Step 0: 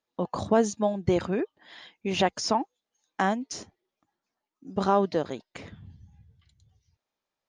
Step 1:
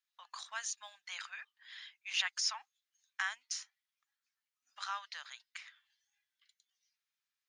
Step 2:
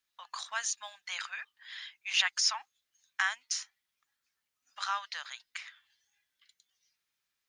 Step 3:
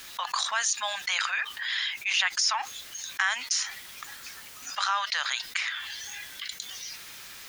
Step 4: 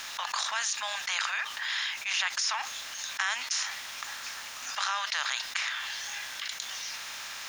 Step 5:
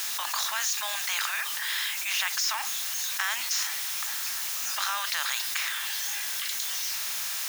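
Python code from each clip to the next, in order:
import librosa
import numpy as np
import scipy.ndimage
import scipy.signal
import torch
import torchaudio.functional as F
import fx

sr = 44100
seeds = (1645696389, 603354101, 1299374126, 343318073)

y1 = scipy.signal.sosfilt(scipy.signal.cheby2(4, 60, 430.0, 'highpass', fs=sr, output='sos'), x)
y1 = F.gain(torch.from_numpy(y1), -2.0).numpy()
y2 = fx.low_shelf(y1, sr, hz=480.0, db=4.0)
y2 = F.gain(torch.from_numpy(y2), 6.0).numpy()
y3 = fx.env_flatten(y2, sr, amount_pct=70)
y4 = fx.bin_compress(y3, sr, power=0.6)
y4 = F.gain(torch.from_numpy(y4), -6.5).numpy()
y5 = y4 + 0.5 * 10.0 ** (-26.5 / 20.0) * np.diff(np.sign(y4), prepend=np.sign(y4[:1]))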